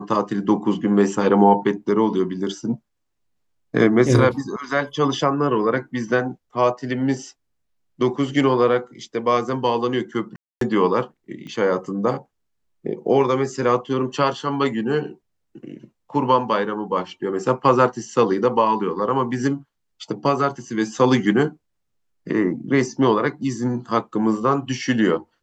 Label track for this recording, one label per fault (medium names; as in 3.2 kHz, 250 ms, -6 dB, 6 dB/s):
10.360000	10.610000	dropout 253 ms
11.470000	11.470000	pop -26 dBFS